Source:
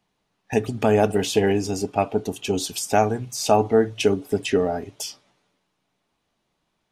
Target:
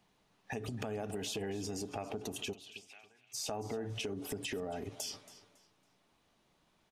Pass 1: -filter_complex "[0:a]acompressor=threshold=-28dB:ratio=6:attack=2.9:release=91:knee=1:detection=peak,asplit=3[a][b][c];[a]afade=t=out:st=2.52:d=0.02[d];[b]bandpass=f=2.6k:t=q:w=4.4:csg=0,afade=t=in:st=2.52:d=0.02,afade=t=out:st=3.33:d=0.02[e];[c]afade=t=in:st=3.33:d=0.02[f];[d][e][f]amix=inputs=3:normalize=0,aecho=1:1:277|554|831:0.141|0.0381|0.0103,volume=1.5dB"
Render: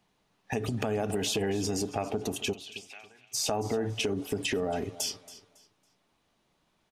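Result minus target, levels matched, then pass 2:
compressor: peak gain reduction -9 dB
-filter_complex "[0:a]acompressor=threshold=-39dB:ratio=6:attack=2.9:release=91:knee=1:detection=peak,asplit=3[a][b][c];[a]afade=t=out:st=2.52:d=0.02[d];[b]bandpass=f=2.6k:t=q:w=4.4:csg=0,afade=t=in:st=2.52:d=0.02,afade=t=out:st=3.33:d=0.02[e];[c]afade=t=in:st=3.33:d=0.02[f];[d][e][f]amix=inputs=3:normalize=0,aecho=1:1:277|554|831:0.141|0.0381|0.0103,volume=1.5dB"

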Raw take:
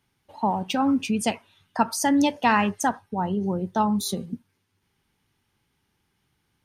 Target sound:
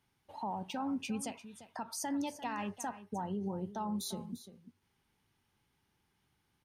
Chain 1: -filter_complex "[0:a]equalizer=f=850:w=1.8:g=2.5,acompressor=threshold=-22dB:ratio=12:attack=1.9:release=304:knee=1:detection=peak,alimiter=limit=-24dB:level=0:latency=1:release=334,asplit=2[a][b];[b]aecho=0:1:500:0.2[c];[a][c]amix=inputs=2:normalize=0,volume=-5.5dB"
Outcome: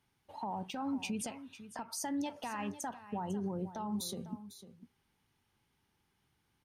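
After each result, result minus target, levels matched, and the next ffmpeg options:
compressor: peak gain reduction +13 dB; echo 0.154 s late
-filter_complex "[0:a]equalizer=f=850:w=1.8:g=2.5,alimiter=limit=-24dB:level=0:latency=1:release=334,asplit=2[a][b];[b]aecho=0:1:500:0.2[c];[a][c]amix=inputs=2:normalize=0,volume=-5.5dB"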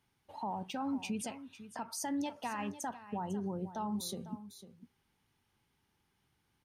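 echo 0.154 s late
-filter_complex "[0:a]equalizer=f=850:w=1.8:g=2.5,alimiter=limit=-24dB:level=0:latency=1:release=334,asplit=2[a][b];[b]aecho=0:1:346:0.2[c];[a][c]amix=inputs=2:normalize=0,volume=-5.5dB"

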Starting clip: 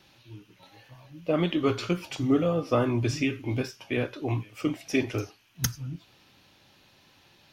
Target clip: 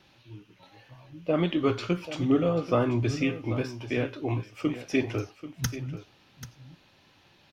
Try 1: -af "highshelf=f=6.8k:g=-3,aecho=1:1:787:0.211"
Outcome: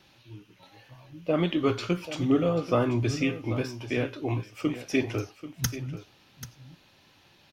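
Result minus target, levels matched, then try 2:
8000 Hz band +3.5 dB
-af "highshelf=f=6.8k:g=-10.5,aecho=1:1:787:0.211"

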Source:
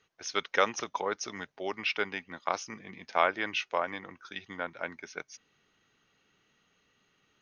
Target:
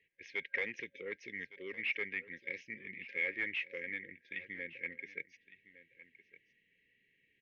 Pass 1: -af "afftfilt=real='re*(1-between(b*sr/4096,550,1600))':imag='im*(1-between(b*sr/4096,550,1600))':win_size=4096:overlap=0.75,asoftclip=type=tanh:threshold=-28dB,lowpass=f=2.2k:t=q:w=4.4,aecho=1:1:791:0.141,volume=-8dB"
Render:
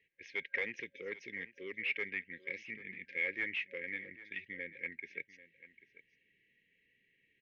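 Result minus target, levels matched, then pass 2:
echo 0.369 s early
-af "afftfilt=real='re*(1-between(b*sr/4096,550,1600))':imag='im*(1-between(b*sr/4096,550,1600))':win_size=4096:overlap=0.75,asoftclip=type=tanh:threshold=-28dB,lowpass=f=2.2k:t=q:w=4.4,aecho=1:1:1160:0.141,volume=-8dB"

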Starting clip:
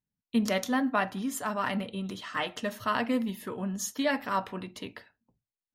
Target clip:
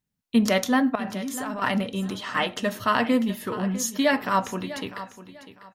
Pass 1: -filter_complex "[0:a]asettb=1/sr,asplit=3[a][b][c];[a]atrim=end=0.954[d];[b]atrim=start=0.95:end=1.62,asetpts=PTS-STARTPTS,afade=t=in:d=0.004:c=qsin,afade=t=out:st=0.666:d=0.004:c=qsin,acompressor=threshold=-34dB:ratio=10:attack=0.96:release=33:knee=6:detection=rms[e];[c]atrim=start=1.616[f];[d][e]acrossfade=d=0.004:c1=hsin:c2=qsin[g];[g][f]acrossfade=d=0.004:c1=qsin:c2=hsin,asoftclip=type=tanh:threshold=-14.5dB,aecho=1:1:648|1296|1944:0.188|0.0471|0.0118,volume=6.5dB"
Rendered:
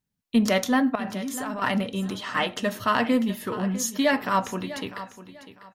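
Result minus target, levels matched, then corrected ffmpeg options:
soft clip: distortion +21 dB
-filter_complex "[0:a]asettb=1/sr,asplit=3[a][b][c];[a]atrim=end=0.954[d];[b]atrim=start=0.95:end=1.62,asetpts=PTS-STARTPTS,afade=t=in:d=0.004:c=qsin,afade=t=out:st=0.666:d=0.004:c=qsin,acompressor=threshold=-34dB:ratio=10:attack=0.96:release=33:knee=6:detection=rms[e];[c]atrim=start=1.616[f];[d][e]acrossfade=d=0.004:c1=hsin:c2=qsin[g];[g][f]acrossfade=d=0.004:c1=qsin:c2=hsin,asoftclip=type=tanh:threshold=-3.5dB,aecho=1:1:648|1296|1944:0.188|0.0471|0.0118,volume=6.5dB"

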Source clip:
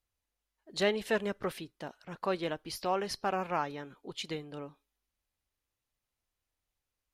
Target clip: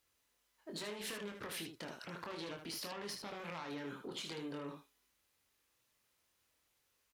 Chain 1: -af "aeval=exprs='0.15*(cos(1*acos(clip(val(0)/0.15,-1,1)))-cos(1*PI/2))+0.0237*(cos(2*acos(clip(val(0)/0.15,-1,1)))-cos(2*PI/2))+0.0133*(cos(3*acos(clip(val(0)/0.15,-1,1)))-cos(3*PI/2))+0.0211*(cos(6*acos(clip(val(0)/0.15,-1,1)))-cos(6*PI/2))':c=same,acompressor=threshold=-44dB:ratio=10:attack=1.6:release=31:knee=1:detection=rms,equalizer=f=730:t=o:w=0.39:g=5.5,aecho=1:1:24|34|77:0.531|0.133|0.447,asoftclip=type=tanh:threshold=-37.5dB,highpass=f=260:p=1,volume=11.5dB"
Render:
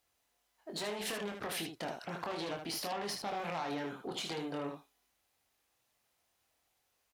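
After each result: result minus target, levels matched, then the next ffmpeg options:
compressor: peak gain reduction -6 dB; 1000 Hz band +3.5 dB
-af "aeval=exprs='0.15*(cos(1*acos(clip(val(0)/0.15,-1,1)))-cos(1*PI/2))+0.0237*(cos(2*acos(clip(val(0)/0.15,-1,1)))-cos(2*PI/2))+0.0133*(cos(3*acos(clip(val(0)/0.15,-1,1)))-cos(3*PI/2))+0.0211*(cos(6*acos(clip(val(0)/0.15,-1,1)))-cos(6*PI/2))':c=same,acompressor=threshold=-50.5dB:ratio=10:attack=1.6:release=31:knee=1:detection=rms,equalizer=f=730:t=o:w=0.39:g=5.5,aecho=1:1:24|34|77:0.531|0.133|0.447,asoftclip=type=tanh:threshold=-37.5dB,highpass=f=260:p=1,volume=11.5dB"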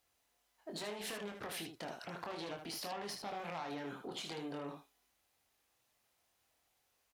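1000 Hz band +3.5 dB
-af "aeval=exprs='0.15*(cos(1*acos(clip(val(0)/0.15,-1,1)))-cos(1*PI/2))+0.0237*(cos(2*acos(clip(val(0)/0.15,-1,1)))-cos(2*PI/2))+0.0133*(cos(3*acos(clip(val(0)/0.15,-1,1)))-cos(3*PI/2))+0.0211*(cos(6*acos(clip(val(0)/0.15,-1,1)))-cos(6*PI/2))':c=same,acompressor=threshold=-50.5dB:ratio=10:attack=1.6:release=31:knee=1:detection=rms,equalizer=f=730:t=o:w=0.39:g=-5,aecho=1:1:24|34|77:0.531|0.133|0.447,asoftclip=type=tanh:threshold=-37.5dB,highpass=f=260:p=1,volume=11.5dB"

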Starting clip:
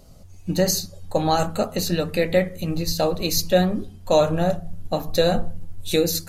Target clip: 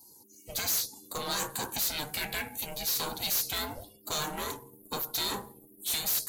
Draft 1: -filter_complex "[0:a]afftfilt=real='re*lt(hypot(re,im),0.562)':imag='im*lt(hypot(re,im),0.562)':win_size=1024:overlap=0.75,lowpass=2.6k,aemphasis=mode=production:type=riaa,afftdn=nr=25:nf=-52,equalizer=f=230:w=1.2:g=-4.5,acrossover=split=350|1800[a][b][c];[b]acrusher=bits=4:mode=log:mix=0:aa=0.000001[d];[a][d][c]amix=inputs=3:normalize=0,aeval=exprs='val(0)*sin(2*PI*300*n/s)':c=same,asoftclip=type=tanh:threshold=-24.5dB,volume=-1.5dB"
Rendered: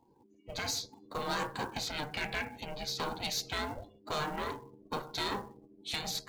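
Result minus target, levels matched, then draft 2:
2000 Hz band +5.0 dB
-filter_complex "[0:a]afftfilt=real='re*lt(hypot(re,im),0.562)':imag='im*lt(hypot(re,im),0.562)':win_size=1024:overlap=0.75,aemphasis=mode=production:type=riaa,afftdn=nr=25:nf=-52,equalizer=f=230:w=1.2:g=-4.5,acrossover=split=350|1800[a][b][c];[b]acrusher=bits=4:mode=log:mix=0:aa=0.000001[d];[a][d][c]amix=inputs=3:normalize=0,aeval=exprs='val(0)*sin(2*PI*300*n/s)':c=same,asoftclip=type=tanh:threshold=-24.5dB,volume=-1.5dB"

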